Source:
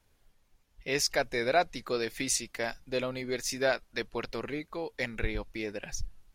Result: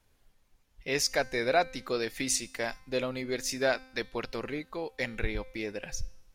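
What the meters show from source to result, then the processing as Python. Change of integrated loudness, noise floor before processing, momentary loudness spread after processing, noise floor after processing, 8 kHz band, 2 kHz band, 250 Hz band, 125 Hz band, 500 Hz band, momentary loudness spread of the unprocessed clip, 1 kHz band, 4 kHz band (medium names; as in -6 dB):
+0.5 dB, -70 dBFS, 10 LU, -68 dBFS, +0.5 dB, +0.5 dB, +0.5 dB, 0.0 dB, +0.5 dB, 10 LU, 0.0 dB, +0.5 dB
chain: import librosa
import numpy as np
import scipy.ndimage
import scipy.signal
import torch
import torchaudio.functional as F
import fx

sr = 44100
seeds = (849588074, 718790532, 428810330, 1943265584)

y = fx.comb_fb(x, sr, f0_hz=260.0, decay_s=0.8, harmonics='all', damping=0.0, mix_pct=50)
y = y * 10.0 ** (6.0 / 20.0)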